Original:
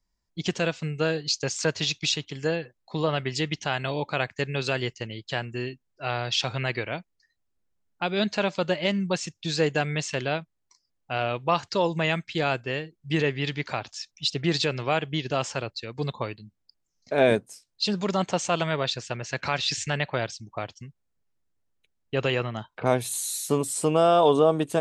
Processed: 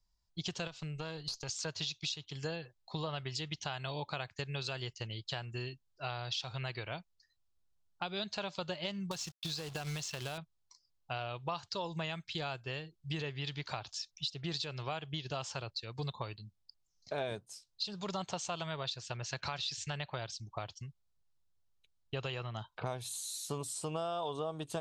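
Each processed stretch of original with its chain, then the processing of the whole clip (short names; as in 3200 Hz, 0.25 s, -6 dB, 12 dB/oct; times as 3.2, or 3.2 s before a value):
0.67–1.49 compressor 3:1, threshold -29 dBFS + tube stage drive 22 dB, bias 0.6
9.11–10.38 companded quantiser 4-bit + compressor, threshold -25 dBFS
whole clip: graphic EQ 250/500/2000/4000 Hz -11/-6/-9/+4 dB; compressor 5:1, threshold -35 dBFS; high shelf 9600 Hz -11 dB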